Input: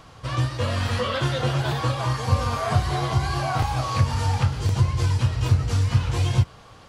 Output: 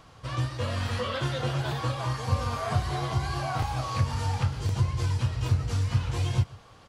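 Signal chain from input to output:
single-tap delay 140 ms −22 dB
level −5.5 dB

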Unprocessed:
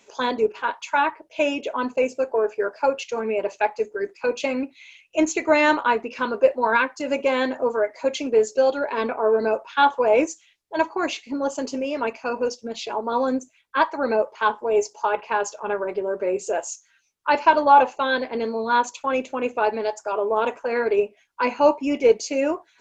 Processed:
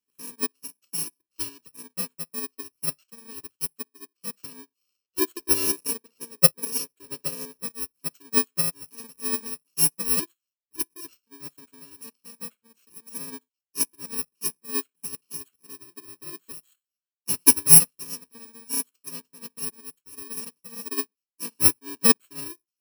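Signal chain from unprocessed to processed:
samples in bit-reversed order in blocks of 64 samples
gain on a spectral selection 0:05.02–0:07.63, 350–830 Hz +6 dB
expander for the loud parts 2.5 to 1, over −32 dBFS
level +2.5 dB

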